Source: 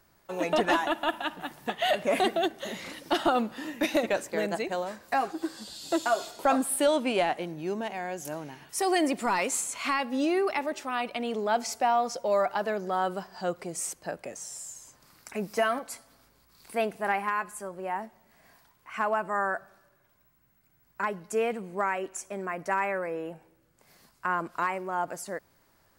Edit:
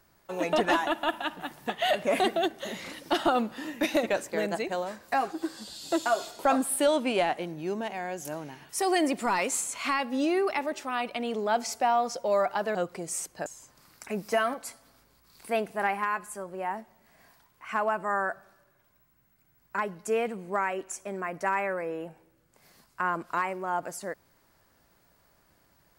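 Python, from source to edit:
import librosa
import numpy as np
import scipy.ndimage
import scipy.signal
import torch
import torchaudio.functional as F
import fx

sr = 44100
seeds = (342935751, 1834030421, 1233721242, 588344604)

y = fx.edit(x, sr, fx.cut(start_s=12.75, length_s=0.67),
    fx.cut(start_s=14.13, length_s=0.58), tone=tone)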